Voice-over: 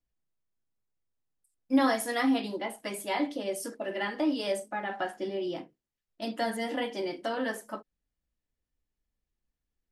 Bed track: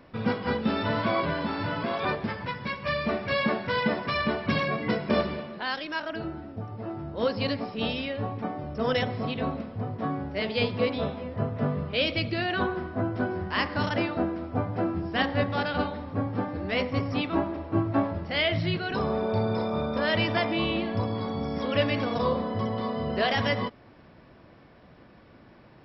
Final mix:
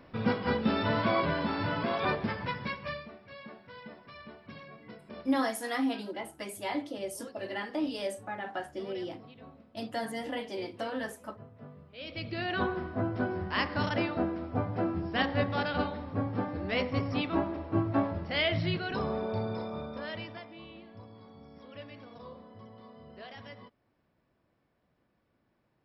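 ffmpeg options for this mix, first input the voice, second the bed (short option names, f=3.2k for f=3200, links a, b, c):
-filter_complex "[0:a]adelay=3550,volume=-4dB[a];[1:a]volume=17dB,afade=t=out:st=2.58:d=0.51:silence=0.1,afade=t=in:st=11.97:d=0.65:silence=0.11885,afade=t=out:st=18.67:d=1.79:silence=0.11885[b];[a][b]amix=inputs=2:normalize=0"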